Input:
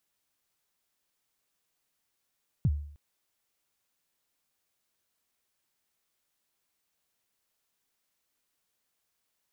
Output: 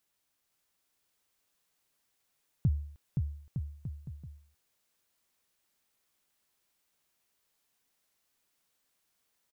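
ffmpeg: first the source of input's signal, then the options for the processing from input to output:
-f lavfi -i "aevalsrc='0.112*pow(10,-3*t/0.59)*sin(2*PI*(170*0.047/log(73/170)*(exp(log(73/170)*min(t,0.047)/0.047)-1)+73*max(t-0.047,0)))':duration=0.31:sample_rate=44100"
-af "aecho=1:1:520|910|1202|1422|1586:0.631|0.398|0.251|0.158|0.1"

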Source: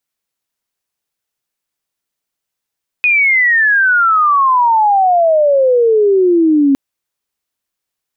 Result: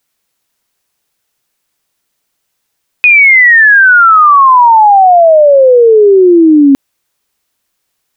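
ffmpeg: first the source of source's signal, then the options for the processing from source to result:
-f lavfi -i "aevalsrc='pow(10,(-8+1*t/3.71)/20)*sin(2*PI*2500*3.71/log(270/2500)*(exp(log(270/2500)*t/3.71)-1))':duration=3.71:sample_rate=44100"
-af "alimiter=level_in=13dB:limit=-1dB:release=50:level=0:latency=1"

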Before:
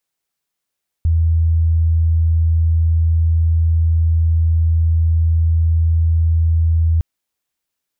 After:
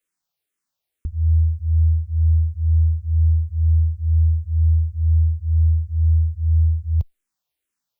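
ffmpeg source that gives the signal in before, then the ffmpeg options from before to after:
-f lavfi -i "sine=frequency=81.8:duration=5.96:sample_rate=44100,volume=7.06dB"
-filter_complex "[0:a]asplit=2[link_01][link_02];[link_02]afreqshift=-2.1[link_03];[link_01][link_03]amix=inputs=2:normalize=1"

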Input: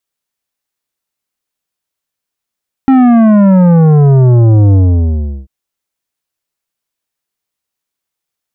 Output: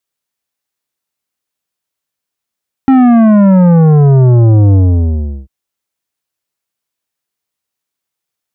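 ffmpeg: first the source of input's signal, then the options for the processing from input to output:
-f lavfi -i "aevalsrc='0.596*clip((2.59-t)/0.73,0,1)*tanh(3.55*sin(2*PI*270*2.59/log(65/270)*(exp(log(65/270)*t/2.59)-1)))/tanh(3.55)':duration=2.59:sample_rate=44100"
-af "highpass=47"

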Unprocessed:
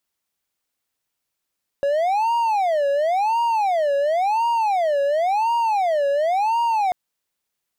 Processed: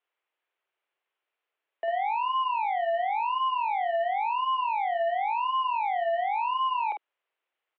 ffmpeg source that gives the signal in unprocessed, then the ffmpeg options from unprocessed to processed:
-f lavfi -i "aevalsrc='0.178*(1-4*abs(mod((749.5*t-190.5/(2*PI*0.94)*sin(2*PI*0.94*t))+0.25,1)-0.5))':duration=5.09:sample_rate=44100"
-filter_complex "[0:a]aresample=16000,asoftclip=type=tanh:threshold=-27.5dB,aresample=44100,asplit=2[link_01][link_02];[link_02]adelay=48,volume=-5dB[link_03];[link_01][link_03]amix=inputs=2:normalize=0,highpass=frequency=250:width_type=q:width=0.5412,highpass=frequency=250:width_type=q:width=1.307,lowpass=frequency=3000:width_type=q:width=0.5176,lowpass=frequency=3000:width_type=q:width=0.7071,lowpass=frequency=3000:width_type=q:width=1.932,afreqshift=110"

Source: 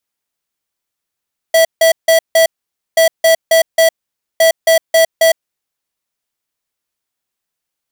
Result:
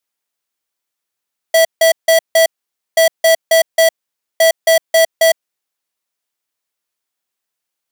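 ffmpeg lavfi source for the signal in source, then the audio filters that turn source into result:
-f lavfi -i "aevalsrc='0.376*(2*lt(mod(654*t,1),0.5)-1)*clip(min(mod(mod(t,1.43),0.27),0.11-mod(mod(t,1.43),0.27))/0.005,0,1)*lt(mod(t,1.43),1.08)':duration=4.29:sample_rate=44100"
-af "lowshelf=frequency=170:gain=-11"

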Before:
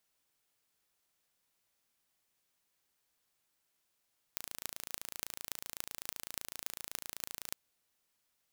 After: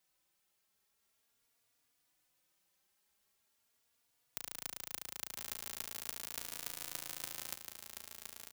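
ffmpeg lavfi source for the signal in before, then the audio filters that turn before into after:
-f lavfi -i "aevalsrc='0.376*eq(mod(n,1581),0)*(0.5+0.5*eq(mod(n,12648),0))':duration=3.17:sample_rate=44100"
-filter_complex "[0:a]asplit=2[link_01][link_02];[link_02]asoftclip=type=tanh:threshold=-18dB,volume=-6dB[link_03];[link_01][link_03]amix=inputs=2:normalize=0,aecho=1:1:1017|2034|3051|4068:0.531|0.186|0.065|0.0228,asplit=2[link_04][link_05];[link_05]adelay=3.5,afreqshift=0.42[link_06];[link_04][link_06]amix=inputs=2:normalize=1"

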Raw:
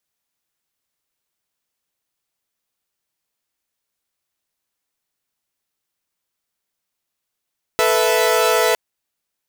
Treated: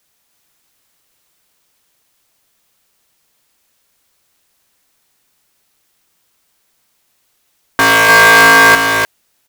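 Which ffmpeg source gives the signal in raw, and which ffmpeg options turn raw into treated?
-f lavfi -i "aevalsrc='0.158*((2*mod(440*t,1)-1)+(2*mod(493.88*t,1)-1)+(2*mod(659.26*t,1)-1))':duration=0.96:sample_rate=44100"
-af "aeval=exprs='0.501*sin(PI/2*4.47*val(0)/0.501)':channel_layout=same,aecho=1:1:300:0.631"

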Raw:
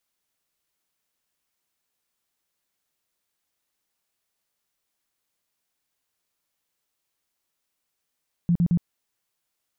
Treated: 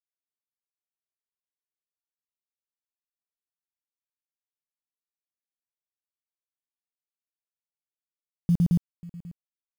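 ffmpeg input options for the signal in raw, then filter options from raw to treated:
-f lavfi -i "aevalsrc='0.15*sin(2*PI*172*mod(t,0.11))*lt(mod(t,0.11),11/172)':duration=0.33:sample_rate=44100"
-af "aeval=exprs='sgn(val(0))*max(abs(val(0))-0.0015,0)':channel_layout=same,aecho=1:1:540:0.106,acrusher=bits=8:mode=log:mix=0:aa=0.000001"

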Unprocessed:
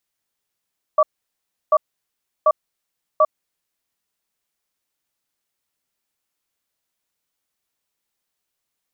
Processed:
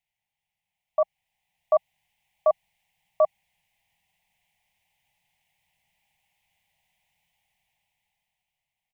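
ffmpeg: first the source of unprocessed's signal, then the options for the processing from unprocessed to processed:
-f lavfi -i "aevalsrc='0.224*(sin(2*PI*619*t)+sin(2*PI*1150*t))*clip(min(mod(t,0.74),0.05-mod(t,0.74))/0.005,0,1)':duration=2.46:sample_rate=44100"
-af "firequalizer=gain_entry='entry(170,0);entry(290,-23);entry(470,-16);entry(800,5);entry(1300,-27);entry(2000,2);entry(2900,0);entry(4200,-12)':delay=0.05:min_phase=1,dynaudnorm=framelen=230:gausssize=13:maxgain=13dB,alimiter=limit=-11.5dB:level=0:latency=1:release=35"

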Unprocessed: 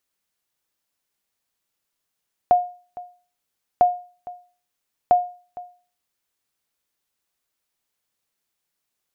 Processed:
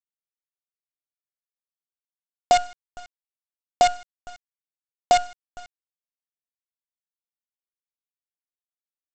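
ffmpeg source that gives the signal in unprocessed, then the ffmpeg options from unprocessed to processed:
-f lavfi -i "aevalsrc='0.422*(sin(2*PI*715*mod(t,1.3))*exp(-6.91*mod(t,1.3)/0.39)+0.1*sin(2*PI*715*max(mod(t,1.3)-0.46,0))*exp(-6.91*max(mod(t,1.3)-0.46,0)/0.39))':duration=3.9:sample_rate=44100"
-af "aresample=16000,acrusher=bits=4:dc=4:mix=0:aa=0.000001,aresample=44100"

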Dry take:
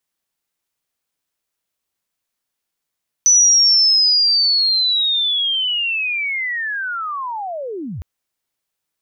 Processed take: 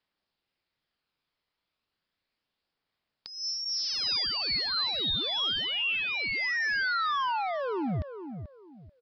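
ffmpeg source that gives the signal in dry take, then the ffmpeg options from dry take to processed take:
-f lavfi -i "aevalsrc='pow(10,(-8-17*t/4.76)/20)*sin(2*PI*(6000*t-5939*t*t/(2*4.76)))':duration=4.76:sample_rate=44100"
-filter_complex "[0:a]aresample=11025,asoftclip=type=hard:threshold=-29.5dB,aresample=44100,aphaser=in_gain=1:out_gain=1:delay=1:decay=0.21:speed=0.34:type=triangular,asplit=2[link_01][link_02];[link_02]adelay=437,lowpass=frequency=1100:poles=1,volume=-9dB,asplit=2[link_03][link_04];[link_04]adelay=437,lowpass=frequency=1100:poles=1,volume=0.28,asplit=2[link_05][link_06];[link_06]adelay=437,lowpass=frequency=1100:poles=1,volume=0.28[link_07];[link_01][link_03][link_05][link_07]amix=inputs=4:normalize=0"

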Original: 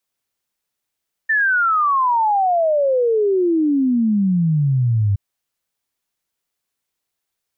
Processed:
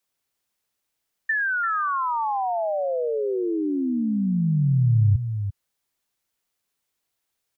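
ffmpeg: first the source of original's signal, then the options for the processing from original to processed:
-f lavfi -i "aevalsrc='0.211*clip(min(t,3.87-t)/0.01,0,1)*sin(2*PI*1800*3.87/log(97/1800)*(exp(log(97/1800)*t/3.87)-1))':duration=3.87:sample_rate=44100"
-filter_complex "[0:a]acrossover=split=120|3000[link_01][link_02][link_03];[link_02]acompressor=threshold=-25dB:ratio=6[link_04];[link_01][link_04][link_03]amix=inputs=3:normalize=0,asplit=2[link_05][link_06];[link_06]aecho=0:1:342:0.355[link_07];[link_05][link_07]amix=inputs=2:normalize=0"

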